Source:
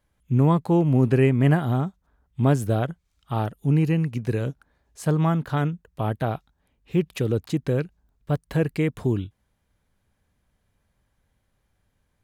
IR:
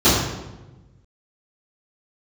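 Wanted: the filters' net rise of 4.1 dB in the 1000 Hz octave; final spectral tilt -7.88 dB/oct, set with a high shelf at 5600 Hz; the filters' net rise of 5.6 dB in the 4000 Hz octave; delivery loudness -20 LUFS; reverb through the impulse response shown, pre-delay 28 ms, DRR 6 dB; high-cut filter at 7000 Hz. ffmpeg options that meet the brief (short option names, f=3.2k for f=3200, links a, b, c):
-filter_complex "[0:a]lowpass=7k,equalizer=f=1k:t=o:g=5,equalizer=f=4k:t=o:g=5.5,highshelf=f=5.6k:g=5.5,asplit=2[a][b];[1:a]atrim=start_sample=2205,adelay=28[c];[b][c]afir=irnorm=-1:irlink=0,volume=-30dB[d];[a][d]amix=inputs=2:normalize=0,volume=-1dB"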